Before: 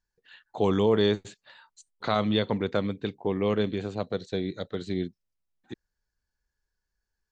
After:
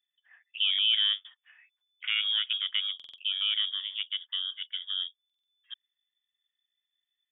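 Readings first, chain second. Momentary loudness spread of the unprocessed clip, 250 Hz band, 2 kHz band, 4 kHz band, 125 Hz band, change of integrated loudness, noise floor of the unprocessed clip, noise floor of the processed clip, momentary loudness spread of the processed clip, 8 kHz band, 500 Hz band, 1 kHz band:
17 LU, under -40 dB, +2.0 dB, +13.0 dB, under -40 dB, 0.0 dB, -85 dBFS, under -85 dBFS, 17 LU, no reading, under -40 dB, -20.0 dB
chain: frequency inversion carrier 3.5 kHz; high-pass 1.3 kHz 24 dB/octave; buffer glitch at 2.95/5.25 s, samples 2048, times 4; trim -3.5 dB

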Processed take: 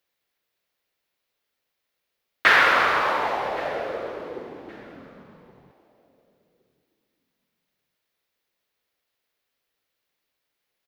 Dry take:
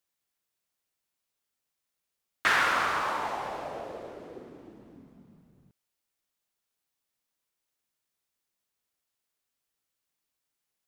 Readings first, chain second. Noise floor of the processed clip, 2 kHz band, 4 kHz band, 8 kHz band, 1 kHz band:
-81 dBFS, +8.5 dB, +7.5 dB, -0.5 dB, +7.0 dB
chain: graphic EQ 500/2000/4000/8000 Hz +7/+5/+4/-8 dB; on a send: feedback delay 1119 ms, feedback 22%, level -21 dB; on the sum: trim +4 dB

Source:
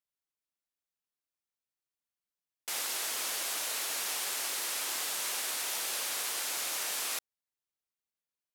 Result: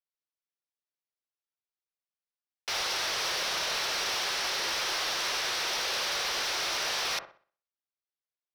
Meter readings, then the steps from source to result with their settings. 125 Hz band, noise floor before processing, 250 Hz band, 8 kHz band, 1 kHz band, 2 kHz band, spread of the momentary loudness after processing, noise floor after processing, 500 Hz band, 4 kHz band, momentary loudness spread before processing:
no reading, under -85 dBFS, +6.5 dB, -2.0 dB, +7.5 dB, +7.0 dB, 2 LU, under -85 dBFS, +8.0 dB, +7.0 dB, 2 LU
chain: Chebyshev band-pass 340–5800 Hz, order 5; waveshaping leveller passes 3; feedback echo behind a low-pass 62 ms, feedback 35%, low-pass 1.2 kHz, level -6 dB

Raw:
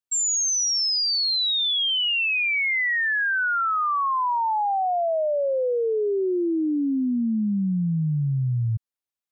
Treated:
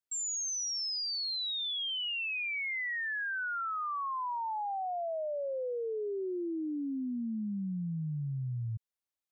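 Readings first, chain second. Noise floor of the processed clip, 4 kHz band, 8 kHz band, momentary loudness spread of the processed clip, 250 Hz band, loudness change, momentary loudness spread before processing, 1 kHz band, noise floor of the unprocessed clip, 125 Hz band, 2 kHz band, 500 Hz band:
under -85 dBFS, -12.0 dB, no reading, 4 LU, -12.0 dB, -12.0 dB, 4 LU, -12.0 dB, under -85 dBFS, -12.0 dB, -12.0 dB, -12.0 dB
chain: peak limiter -28.5 dBFS, peak gain reduction 8.5 dB; trim -3.5 dB

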